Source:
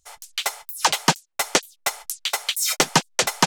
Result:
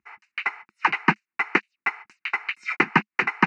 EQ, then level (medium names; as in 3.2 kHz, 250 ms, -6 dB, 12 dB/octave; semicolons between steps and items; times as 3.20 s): cabinet simulation 180–2900 Hz, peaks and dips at 210 Hz +7 dB, 340 Hz +7 dB, 2.8 kHz +7 dB; peaking EQ 2.2 kHz +7.5 dB 0.59 oct; static phaser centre 1.4 kHz, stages 4; +1.0 dB